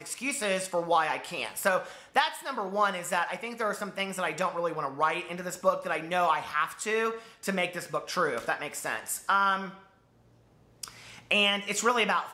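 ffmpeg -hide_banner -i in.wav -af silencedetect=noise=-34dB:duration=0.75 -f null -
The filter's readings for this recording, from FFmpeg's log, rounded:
silence_start: 9.69
silence_end: 10.83 | silence_duration: 1.14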